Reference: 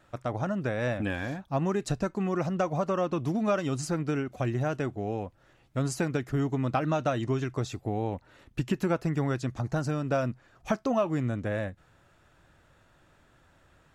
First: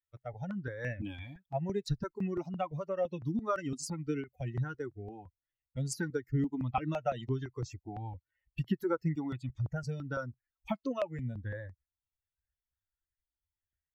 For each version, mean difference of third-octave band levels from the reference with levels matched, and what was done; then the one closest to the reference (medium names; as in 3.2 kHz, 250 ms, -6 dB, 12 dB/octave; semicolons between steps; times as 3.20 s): 9.0 dB: expander on every frequency bin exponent 2; stepped phaser 5.9 Hz 210–3600 Hz; trim +1.5 dB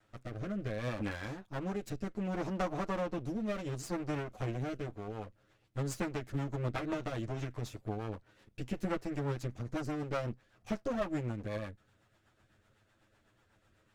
4.0 dB: comb filter that takes the minimum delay 9.4 ms; rotary cabinet horn 0.65 Hz, later 8 Hz, at 4.61 s; trim -4.5 dB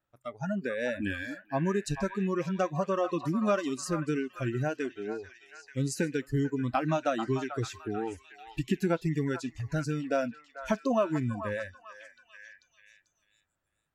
6.5 dB: spectral noise reduction 23 dB; repeats whose band climbs or falls 441 ms, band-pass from 1.1 kHz, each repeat 0.7 oct, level -6 dB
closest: second